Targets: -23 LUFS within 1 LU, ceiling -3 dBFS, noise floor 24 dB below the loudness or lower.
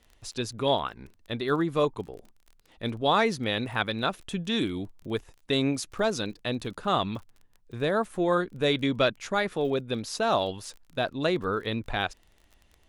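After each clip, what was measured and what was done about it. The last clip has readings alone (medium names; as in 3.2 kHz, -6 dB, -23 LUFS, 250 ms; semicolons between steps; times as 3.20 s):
tick rate 23 per s; loudness -28.5 LUFS; peak level -10.5 dBFS; loudness target -23.0 LUFS
-> de-click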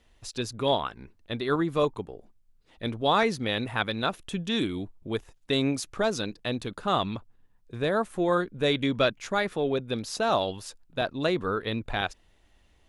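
tick rate 0 per s; loudness -28.5 LUFS; peak level -10.5 dBFS; loudness target -23.0 LUFS
-> trim +5.5 dB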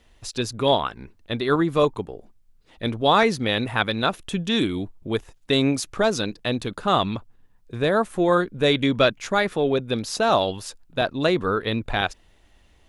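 loudness -23.0 LUFS; peak level -5.0 dBFS; noise floor -58 dBFS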